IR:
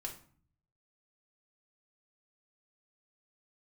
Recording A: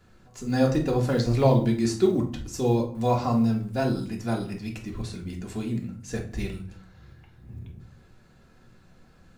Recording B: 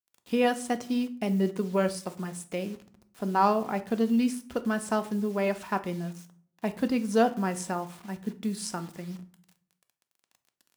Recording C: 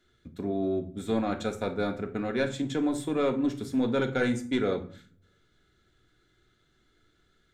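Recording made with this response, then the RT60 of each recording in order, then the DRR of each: A; 0.50, 0.50, 0.50 seconds; −0.5, 8.5, 4.5 decibels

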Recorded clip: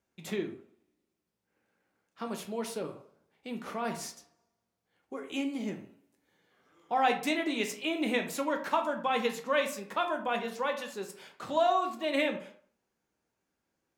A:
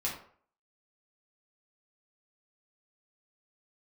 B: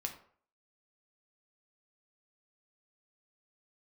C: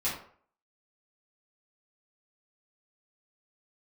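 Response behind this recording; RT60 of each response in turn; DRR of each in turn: B; 0.50, 0.50, 0.50 seconds; −5.0, 3.0, −10.0 decibels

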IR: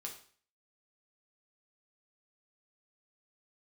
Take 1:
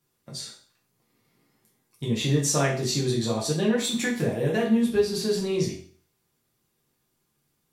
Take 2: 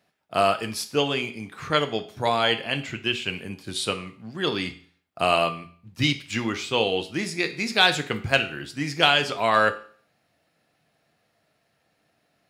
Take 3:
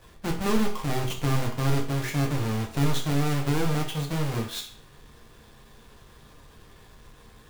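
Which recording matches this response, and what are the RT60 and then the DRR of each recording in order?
3; 0.45, 0.45, 0.45 seconds; −5.0, 7.5, 0.0 decibels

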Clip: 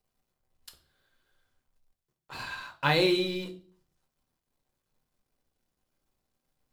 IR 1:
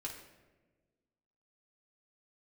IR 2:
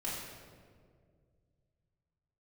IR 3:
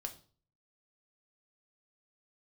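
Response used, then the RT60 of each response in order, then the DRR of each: 3; 1.3, 2.0, 0.40 seconds; −2.5, −8.5, 4.0 decibels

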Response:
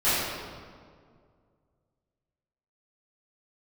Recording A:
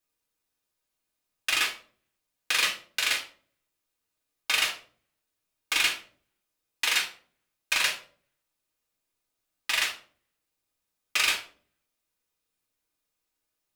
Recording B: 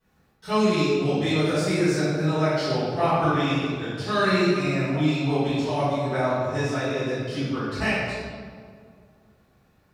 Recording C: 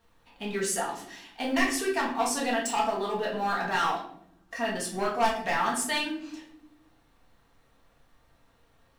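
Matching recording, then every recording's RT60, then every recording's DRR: B; 0.45, 2.0, 0.70 seconds; −1.5, −16.5, −4.0 decibels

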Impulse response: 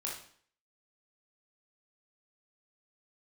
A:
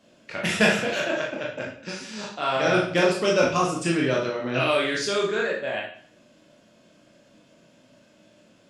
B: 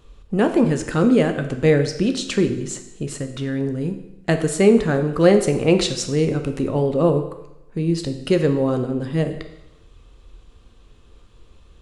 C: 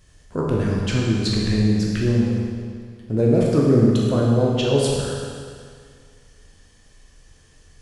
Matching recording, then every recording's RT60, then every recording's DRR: A; 0.55, 0.85, 2.0 seconds; −3.5, 6.5, −4.0 decibels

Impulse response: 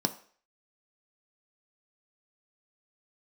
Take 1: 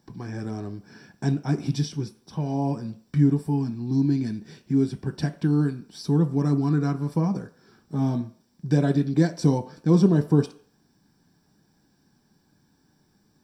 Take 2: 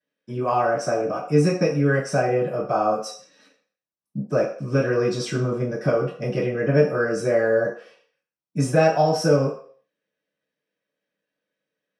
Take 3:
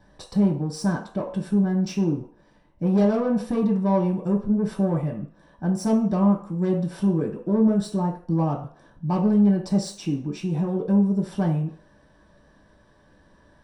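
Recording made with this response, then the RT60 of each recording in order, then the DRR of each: 1; 0.50, 0.50, 0.50 seconds; 7.0, −12.0, −2.5 decibels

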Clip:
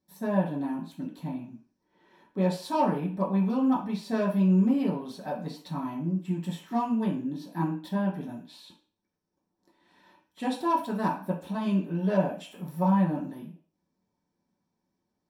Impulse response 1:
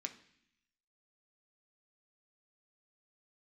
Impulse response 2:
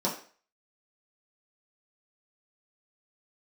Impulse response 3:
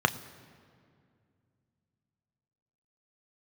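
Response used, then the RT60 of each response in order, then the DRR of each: 2; 0.65, 0.45, 2.3 seconds; 4.5, −6.0, 9.0 decibels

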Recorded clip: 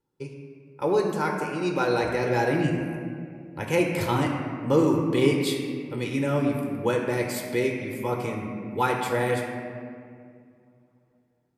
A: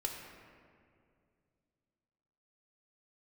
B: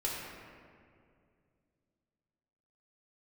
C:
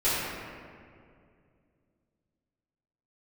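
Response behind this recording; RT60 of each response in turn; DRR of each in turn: A; 2.3, 2.3, 2.3 seconds; 0.0, −5.5, −14.0 decibels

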